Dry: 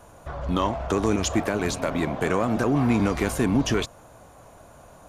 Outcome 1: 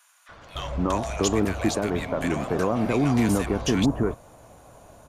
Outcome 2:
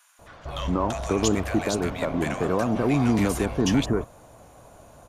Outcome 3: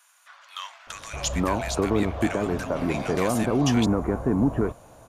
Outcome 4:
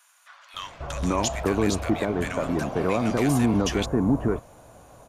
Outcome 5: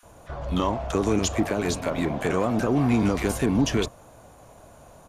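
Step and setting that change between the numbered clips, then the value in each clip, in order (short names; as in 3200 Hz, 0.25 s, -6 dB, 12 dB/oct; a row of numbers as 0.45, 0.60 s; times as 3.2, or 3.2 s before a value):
bands offset in time, time: 290, 190, 870, 540, 30 ms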